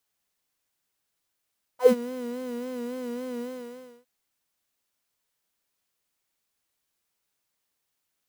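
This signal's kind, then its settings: synth patch with vibrato B4, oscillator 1 triangle, interval +12 st, oscillator 2 level -13 dB, sub -12.5 dB, noise -17 dB, filter highpass, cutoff 140 Hz, Q 7.7, filter envelope 3 oct, filter decay 0.13 s, filter sustain 20%, attack 0.102 s, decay 0.06 s, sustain -15 dB, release 0.64 s, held 1.62 s, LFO 3.6 Hz, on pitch 66 cents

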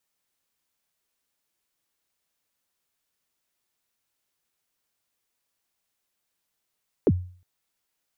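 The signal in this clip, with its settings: kick drum length 0.36 s, from 510 Hz, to 90 Hz, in 46 ms, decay 0.45 s, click off, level -12.5 dB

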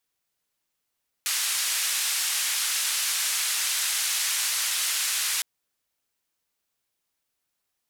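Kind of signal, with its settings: noise band 1600–11000 Hz, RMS -26.5 dBFS 4.16 s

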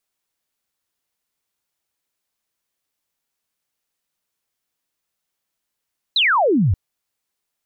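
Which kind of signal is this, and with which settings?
laser zap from 4200 Hz, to 81 Hz, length 0.58 s sine, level -13 dB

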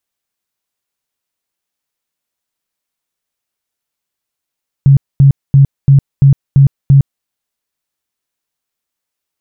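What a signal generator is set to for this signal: tone bursts 138 Hz, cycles 15, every 0.34 s, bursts 7, -2 dBFS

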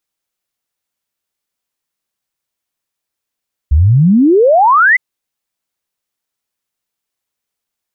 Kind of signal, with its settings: log sweep 66 Hz -> 2100 Hz 1.26 s -5 dBFS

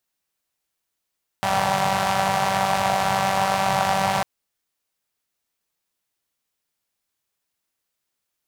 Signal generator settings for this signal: four-cylinder engine model, steady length 2.80 s, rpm 5800, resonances 140/740 Hz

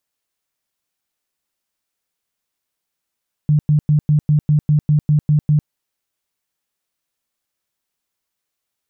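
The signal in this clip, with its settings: tone bursts 150 Hz, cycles 15, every 0.20 s, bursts 11, -10 dBFS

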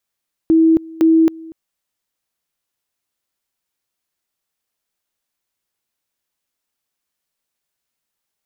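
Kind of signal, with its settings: two-level tone 324 Hz -8 dBFS, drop 23 dB, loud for 0.27 s, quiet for 0.24 s, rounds 2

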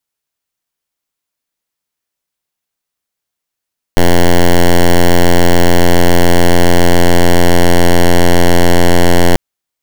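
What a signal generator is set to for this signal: pulse 87.1 Hz, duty 7% -5 dBFS 5.39 s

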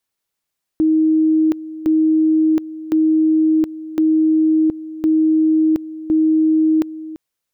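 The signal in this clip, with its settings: two-level tone 315 Hz -11 dBFS, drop 16 dB, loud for 0.72 s, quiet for 0.34 s, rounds 6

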